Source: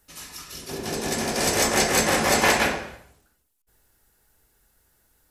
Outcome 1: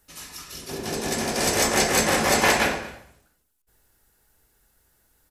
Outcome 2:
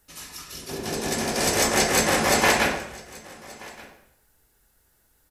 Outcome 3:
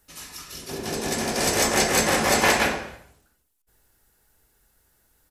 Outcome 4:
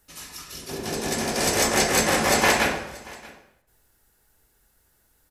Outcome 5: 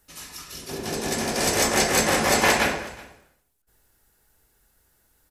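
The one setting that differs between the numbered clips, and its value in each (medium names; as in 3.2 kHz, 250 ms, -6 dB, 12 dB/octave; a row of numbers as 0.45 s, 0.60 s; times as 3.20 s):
delay, time: 229 ms, 1177 ms, 81 ms, 631 ms, 371 ms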